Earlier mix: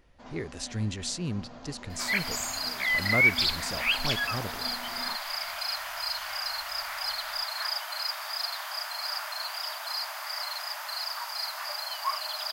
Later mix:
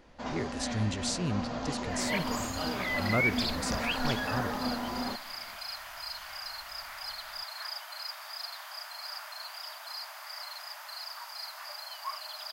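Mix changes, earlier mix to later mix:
first sound +11.0 dB
second sound −7.5 dB

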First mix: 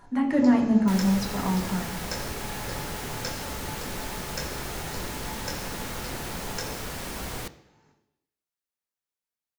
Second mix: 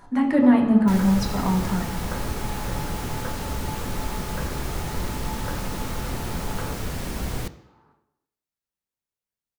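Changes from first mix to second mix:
speech +3.5 dB
first sound: add low-pass with resonance 1,200 Hz, resonance Q 3.4
second sound: add low-shelf EQ 310 Hz +10 dB

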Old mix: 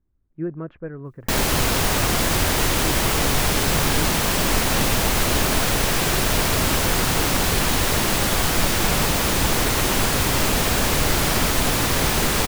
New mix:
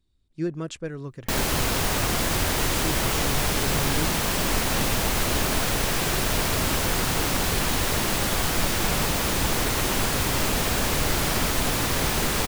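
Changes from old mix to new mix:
speech: remove low-pass filter 1,700 Hz 24 dB per octave
background −4.0 dB

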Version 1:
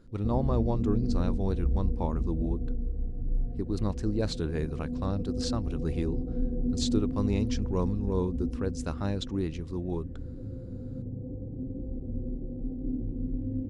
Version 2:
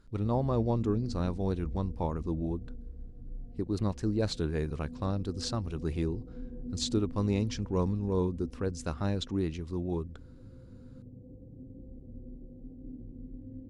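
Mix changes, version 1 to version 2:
background −10.0 dB
reverb: off

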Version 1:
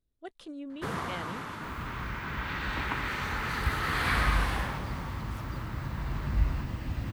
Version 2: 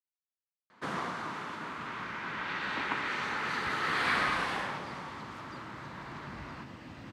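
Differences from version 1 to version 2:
speech: muted
second sound −5.0 dB
master: add band-pass filter 200–7,200 Hz

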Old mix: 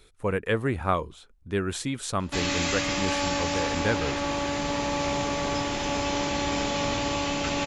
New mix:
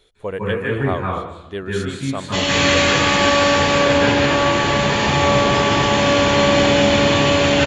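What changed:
speech −6.0 dB
reverb: on, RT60 0.90 s

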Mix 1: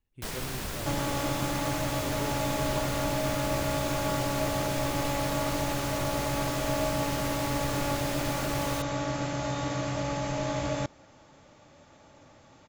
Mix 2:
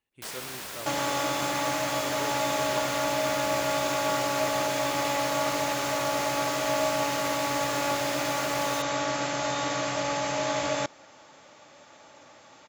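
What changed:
speech +5.5 dB
second sound +7.0 dB
master: add high-pass filter 690 Hz 6 dB per octave

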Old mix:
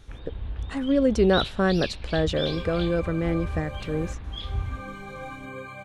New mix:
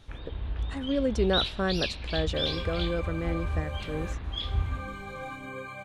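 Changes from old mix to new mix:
speech −4.5 dB
first sound: send on
master: add low-shelf EQ 440 Hz −3 dB

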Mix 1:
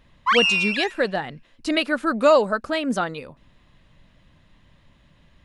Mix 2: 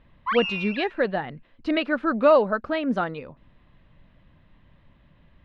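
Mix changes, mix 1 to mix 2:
background −5.0 dB
master: add high-frequency loss of the air 330 metres

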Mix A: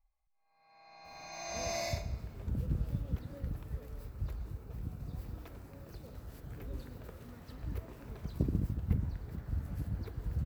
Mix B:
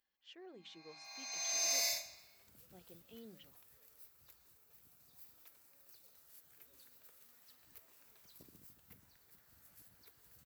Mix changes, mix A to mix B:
speech: unmuted
first sound +10.5 dB
master: add first difference

